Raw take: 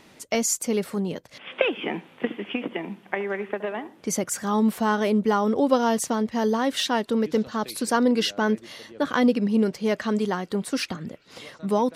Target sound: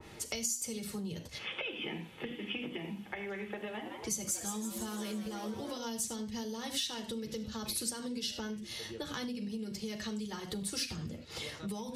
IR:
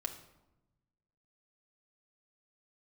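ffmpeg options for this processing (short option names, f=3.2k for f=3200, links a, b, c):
-filter_complex "[1:a]atrim=start_sample=2205,atrim=end_sample=3087,asetrate=29106,aresample=44100[a];[0:a][a]afir=irnorm=-1:irlink=0,alimiter=limit=-13dB:level=0:latency=1:release=378,equalizer=f=61:w=0.84:g=14,asettb=1/sr,asplit=3[b][c][d];[b]atrim=end=3.694[e];[c]atrim=start=3.69:end=5.78,asetpts=PTS-STARTPTS,afade=t=in:d=0.004:c=qsin,afade=t=out:st=2.086:d=0.004:c=qsin,asplit=8[f][g][h][i][j][k][l][m];[g]adelay=166,afreqshift=130,volume=-9dB[n];[h]adelay=332,afreqshift=260,volume=-13.4dB[o];[i]adelay=498,afreqshift=390,volume=-17.9dB[p];[j]adelay=664,afreqshift=520,volume=-22.3dB[q];[k]adelay=830,afreqshift=650,volume=-26.7dB[r];[l]adelay=996,afreqshift=780,volume=-31.2dB[s];[m]adelay=1162,afreqshift=910,volume=-35.6dB[t];[f][n][o][p][q][r][s][t]amix=inputs=8:normalize=0,atrim=end_sample=92169[u];[d]atrim=start=5.776[v];[e][u]acrossfade=d=0.004:c1=hsin:c2=qsin[w];[w][v]acrossfade=d=0.004:c1=qsin:c2=hsin,acrossover=split=160|3000[x][y][z];[y]acompressor=threshold=-42dB:ratio=2.5[aa];[x][aa][z]amix=inputs=3:normalize=0,bandreject=f=240.6:t=h:w=4,bandreject=f=481.2:t=h:w=4,bandreject=f=721.8:t=h:w=4,bandreject=f=962.4:t=h:w=4,bandreject=f=1.203k:t=h:w=4,bandreject=f=1.4436k:t=h:w=4,bandreject=f=1.6842k:t=h:w=4,bandreject=f=1.9248k:t=h:w=4,bandreject=f=2.1654k:t=h:w=4,bandreject=f=2.406k:t=h:w=4,bandreject=f=2.6466k:t=h:w=4,bandreject=f=2.8872k:t=h:w=4,bandreject=f=3.1278k:t=h:w=4,bandreject=f=3.3684k:t=h:w=4,bandreject=f=3.609k:t=h:w=4,bandreject=f=3.8496k:t=h:w=4,bandreject=f=4.0902k:t=h:w=4,bandreject=f=4.3308k:t=h:w=4,bandreject=f=4.5714k:t=h:w=4,bandreject=f=4.812k:t=h:w=4,bandreject=f=5.0526k:t=h:w=4,bandreject=f=5.2932k:t=h:w=4,bandreject=f=5.5338k:t=h:w=4,bandreject=f=5.7744k:t=h:w=4,bandreject=f=6.015k:t=h:w=4,bandreject=f=6.2556k:t=h:w=4,bandreject=f=6.4962k:t=h:w=4,bandreject=f=6.7368k:t=h:w=4,bandreject=f=6.9774k:t=h:w=4,bandreject=f=7.218k:t=h:w=4,bandreject=f=7.4586k:t=h:w=4,bandreject=f=7.6992k:t=h:w=4,bandreject=f=7.9398k:t=h:w=4,bandreject=f=8.1804k:t=h:w=4,bandreject=f=8.421k:t=h:w=4,acompressor=threshold=-34dB:ratio=6,adynamicequalizer=threshold=0.00224:dfrequency=2100:dqfactor=0.7:tfrequency=2100:tqfactor=0.7:attack=5:release=100:ratio=0.375:range=2:mode=boostabove:tftype=highshelf,volume=-2dB"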